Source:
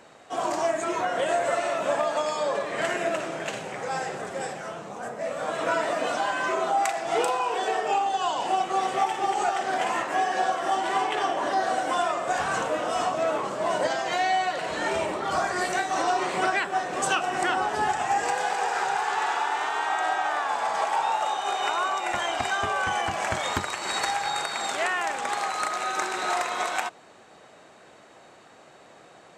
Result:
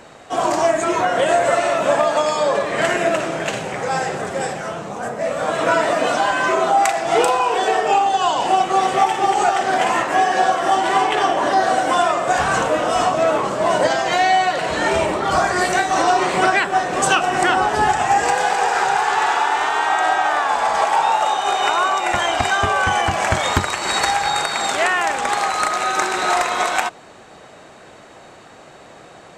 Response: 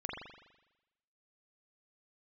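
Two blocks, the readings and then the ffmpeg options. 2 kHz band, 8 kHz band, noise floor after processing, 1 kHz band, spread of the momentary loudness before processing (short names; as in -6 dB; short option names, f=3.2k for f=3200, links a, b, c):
+8.5 dB, +8.5 dB, -43 dBFS, +8.5 dB, 4 LU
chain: -af "lowshelf=f=90:g=11.5,volume=8.5dB"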